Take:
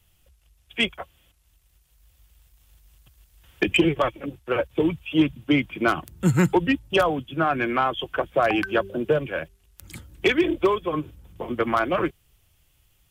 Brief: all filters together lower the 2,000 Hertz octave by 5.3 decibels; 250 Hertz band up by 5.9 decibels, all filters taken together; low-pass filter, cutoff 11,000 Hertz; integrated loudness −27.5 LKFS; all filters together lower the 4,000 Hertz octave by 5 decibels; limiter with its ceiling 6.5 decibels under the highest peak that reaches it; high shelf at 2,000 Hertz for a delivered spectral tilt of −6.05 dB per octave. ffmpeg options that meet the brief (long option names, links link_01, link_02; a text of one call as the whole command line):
ffmpeg -i in.wav -af "lowpass=11000,equalizer=frequency=250:width_type=o:gain=8.5,highshelf=frequency=2000:gain=5,equalizer=frequency=2000:width_type=o:gain=-8.5,equalizer=frequency=4000:width_type=o:gain=-8,volume=-5dB,alimiter=limit=-15.5dB:level=0:latency=1" out.wav